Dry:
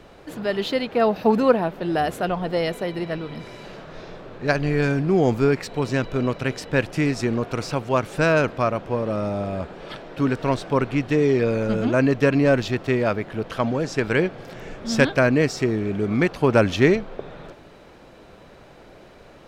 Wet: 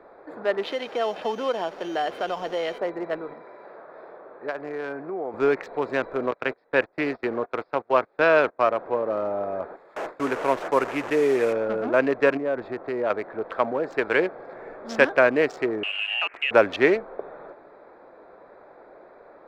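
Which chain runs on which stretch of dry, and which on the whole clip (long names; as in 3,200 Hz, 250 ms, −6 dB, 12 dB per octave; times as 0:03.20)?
0:00.66–0:02.78: downward compressor 2.5 to 1, threshold −25 dBFS + steady tone 3,100 Hz −29 dBFS
0:03.33–0:05.34: high-pass filter 840 Hz 6 dB per octave + spectral tilt −2.5 dB per octave + downward compressor, threshold −24 dBFS
0:06.31–0:08.64: noise gate −28 dBFS, range −26 dB + bad sample-rate conversion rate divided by 4×, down none, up filtered + one half of a high-frequency compander encoder only
0:09.76–0:11.53: linear delta modulator 64 kbit/s, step −23 dBFS + noise gate with hold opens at −23 dBFS, closes at −27 dBFS
0:12.37–0:13.10: downward compressor 12 to 1, threshold −19 dBFS + low-pass filter 1,900 Hz 6 dB per octave
0:15.83–0:16.51: downward compressor 2.5 to 1, threshold −24 dBFS + voice inversion scrambler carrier 3,000 Hz
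whole clip: adaptive Wiener filter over 15 samples; three-way crossover with the lows and the highs turned down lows −23 dB, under 350 Hz, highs −13 dB, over 3,300 Hz; level +2.5 dB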